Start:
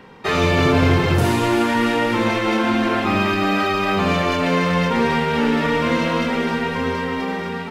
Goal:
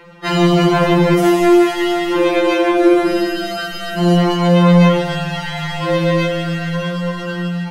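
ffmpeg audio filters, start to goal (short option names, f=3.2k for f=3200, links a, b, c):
-filter_complex "[0:a]asettb=1/sr,asplit=3[a][b][c];[a]atrim=end=2.774[d];[b]atrim=start=2.77:end=4.17,asetpts=PTS-STARTPTS,afade=t=in:d=0.004:c=qsin,afade=t=out:st=1.396:d=0.004:c=qsin,equalizer=f=400:t=o:w=0.67:g=8,equalizer=f=1k:t=o:w=0.67:g=-7,equalizer=f=2.5k:t=o:w=0.67:g=-4,equalizer=f=10k:t=o:w=0.67:g=6[e];[c]atrim=start=4.166[f];[d][e]acrossfade=d=0.004:c1=hsin:c2=qsin[g];[g][f]acrossfade=d=0.004:c1=qsin:c2=hsin,afftfilt=real='re*2.83*eq(mod(b,8),0)':imag='im*2.83*eq(mod(b,8),0)':win_size=2048:overlap=0.75,volume=5dB"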